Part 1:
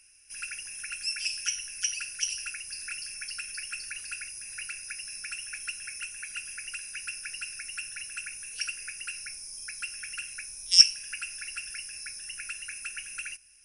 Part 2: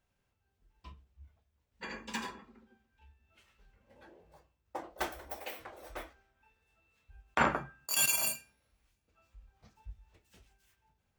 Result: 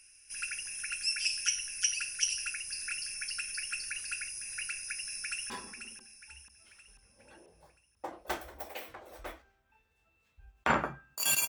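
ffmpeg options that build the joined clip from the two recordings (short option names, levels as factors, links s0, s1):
-filter_complex "[0:a]apad=whole_dur=11.48,atrim=end=11.48,atrim=end=5.502[s0];[1:a]atrim=start=2.208:end=8.19[s1];[s0][s1]acrossfade=d=0.004:c1=hsin:c2=hsin,asplit=2[s2][s3];[s3]afade=t=in:st=5.02:d=0.01,afade=t=out:st=5.5:d=0.01,aecho=0:1:490|980|1470|1960|2450|2940:0.375837|0.187919|0.0939594|0.0469797|0.0234898|0.0117449[s4];[s2][s4]amix=inputs=2:normalize=0"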